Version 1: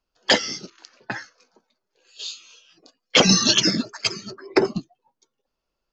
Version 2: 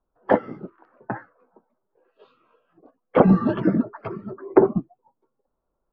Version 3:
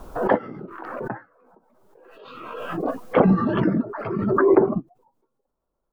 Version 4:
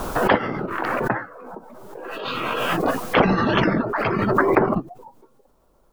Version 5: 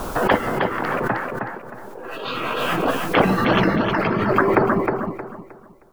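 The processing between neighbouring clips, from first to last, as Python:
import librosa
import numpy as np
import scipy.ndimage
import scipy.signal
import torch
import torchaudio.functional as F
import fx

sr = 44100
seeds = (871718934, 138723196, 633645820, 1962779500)

y1 = scipy.signal.sosfilt(scipy.signal.butter(4, 1200.0, 'lowpass', fs=sr, output='sos'), x)
y1 = y1 * 10.0 ** (4.0 / 20.0)
y2 = fx.pre_swell(y1, sr, db_per_s=32.0)
y2 = y2 * 10.0 ** (-2.5 / 20.0)
y3 = fx.spectral_comp(y2, sr, ratio=2.0)
y3 = y3 * 10.0 ** (1.5 / 20.0)
y4 = fx.echo_feedback(y3, sr, ms=312, feedback_pct=29, wet_db=-5)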